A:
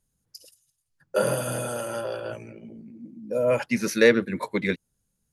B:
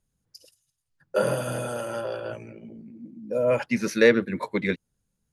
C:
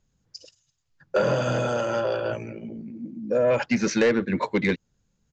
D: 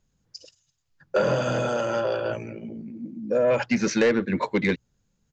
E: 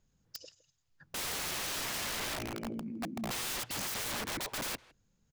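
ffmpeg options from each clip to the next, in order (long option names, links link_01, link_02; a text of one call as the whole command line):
ffmpeg -i in.wav -af "highshelf=frequency=7400:gain=-9.5" out.wav
ffmpeg -i in.wav -af "acompressor=threshold=-24dB:ratio=2,aresample=16000,asoftclip=type=tanh:threshold=-20dB,aresample=44100,volume=6.5dB" out.wav
ffmpeg -i in.wav -af "bandreject=frequency=60:width_type=h:width=6,bandreject=frequency=120:width_type=h:width=6" out.wav
ffmpeg -i in.wav -filter_complex "[0:a]aeval=exprs='(mod(29.9*val(0)+1,2)-1)/29.9':channel_layout=same,asplit=2[link_01][link_02];[link_02]adelay=160,highpass=300,lowpass=3400,asoftclip=type=hard:threshold=-38dB,volume=-18dB[link_03];[link_01][link_03]amix=inputs=2:normalize=0,volume=-2.5dB" out.wav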